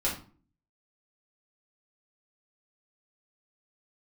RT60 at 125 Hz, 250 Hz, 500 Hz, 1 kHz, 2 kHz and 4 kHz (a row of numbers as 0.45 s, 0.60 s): 0.60 s, 0.60 s, 0.40 s, 0.40 s, 0.30 s, 0.30 s